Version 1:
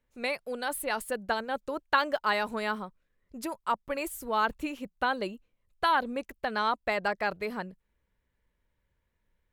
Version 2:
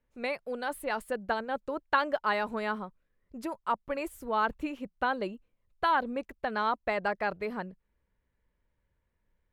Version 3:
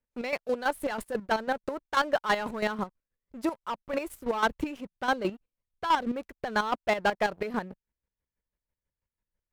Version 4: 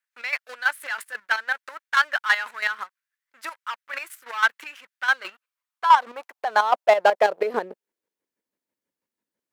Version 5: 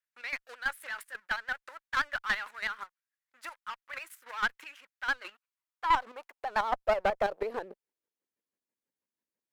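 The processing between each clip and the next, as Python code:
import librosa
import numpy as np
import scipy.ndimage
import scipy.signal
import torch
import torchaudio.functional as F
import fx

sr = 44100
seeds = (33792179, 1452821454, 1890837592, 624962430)

y1 = fx.high_shelf(x, sr, hz=3700.0, db=-11.5)
y2 = fx.leveller(y1, sr, passes=3)
y2 = fx.chopper(y2, sr, hz=6.1, depth_pct=65, duty_pct=30)
y2 = F.gain(torch.from_numpy(y2), -2.5).numpy()
y3 = fx.filter_sweep_highpass(y2, sr, from_hz=1600.0, to_hz=270.0, start_s=5.06, end_s=8.53, q=2.4)
y3 = F.gain(torch.from_numpy(y3), 4.0).numpy()
y4 = fx.diode_clip(y3, sr, knee_db=-15.5)
y4 = fx.vibrato(y4, sr, rate_hz=11.0, depth_cents=80.0)
y4 = F.gain(torch.from_numpy(y4), -8.0).numpy()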